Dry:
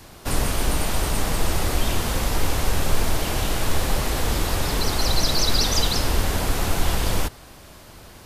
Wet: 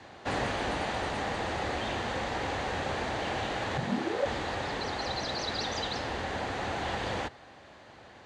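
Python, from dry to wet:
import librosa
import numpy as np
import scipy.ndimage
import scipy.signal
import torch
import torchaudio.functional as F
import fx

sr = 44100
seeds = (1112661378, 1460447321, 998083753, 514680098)

y = fx.rider(x, sr, range_db=10, speed_s=2.0)
y = fx.ring_mod(y, sr, carrier_hz=fx.line((3.77, 130.0), (4.24, 570.0)), at=(3.77, 4.24), fade=0.02)
y = fx.cabinet(y, sr, low_hz=110.0, low_slope=12, high_hz=5800.0, hz=(160.0, 530.0, 790.0, 1800.0, 5300.0), db=(-5, 4, 7, 7, -9))
y = F.gain(torch.from_numpy(y), -8.0).numpy()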